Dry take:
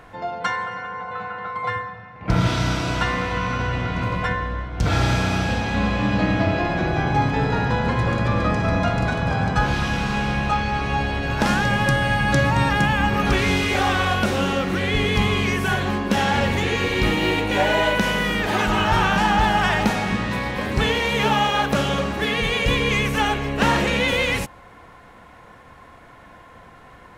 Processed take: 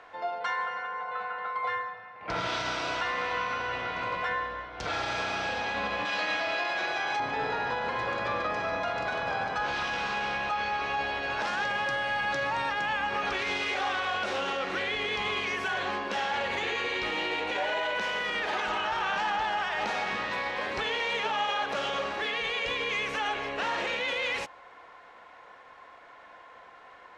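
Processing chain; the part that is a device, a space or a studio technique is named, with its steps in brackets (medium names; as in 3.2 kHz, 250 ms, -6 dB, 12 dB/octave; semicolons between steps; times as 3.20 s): DJ mixer with the lows and highs turned down (three-band isolator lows -21 dB, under 400 Hz, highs -24 dB, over 6.5 kHz; peak limiter -18 dBFS, peak gain reduction 9.5 dB); 6.05–7.20 s: tilt EQ +3.5 dB/octave; 16.37–17.01 s: band-stop 5.4 kHz, Q 11; trim -3.5 dB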